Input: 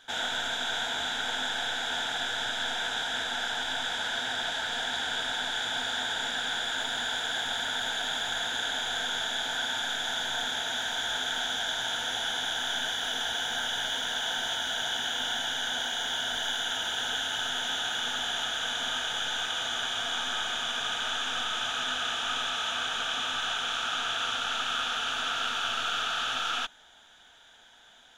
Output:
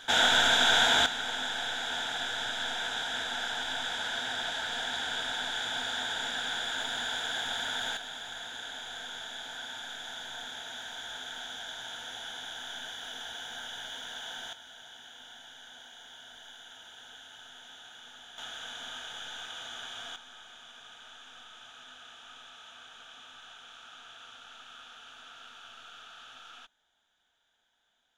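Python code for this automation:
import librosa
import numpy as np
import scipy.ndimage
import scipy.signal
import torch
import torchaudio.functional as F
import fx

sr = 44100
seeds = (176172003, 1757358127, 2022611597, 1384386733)

y = fx.gain(x, sr, db=fx.steps((0.0, 8.0), (1.06, -2.5), (7.97, -10.0), (14.53, -19.0), (18.38, -10.5), (20.16, -19.5)))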